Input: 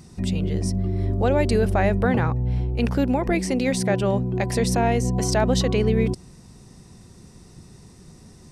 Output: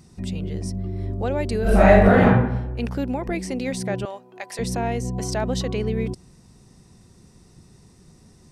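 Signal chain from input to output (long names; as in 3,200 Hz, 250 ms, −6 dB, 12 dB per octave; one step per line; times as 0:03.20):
0:01.62–0:02.23: thrown reverb, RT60 0.91 s, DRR −12 dB
0:04.05–0:04.59: high-pass filter 760 Hz 12 dB per octave
level −4.5 dB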